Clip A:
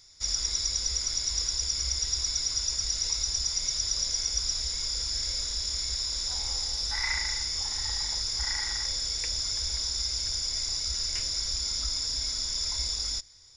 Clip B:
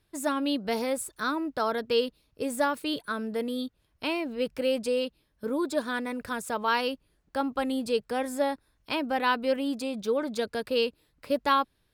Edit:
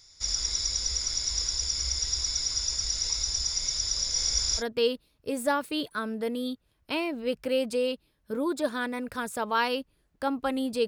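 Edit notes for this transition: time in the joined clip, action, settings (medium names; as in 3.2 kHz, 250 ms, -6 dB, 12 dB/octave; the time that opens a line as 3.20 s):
clip A
4.01–4.63 s: chunks repeated in reverse 149 ms, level -1 dB
4.60 s: go over to clip B from 1.73 s, crossfade 0.06 s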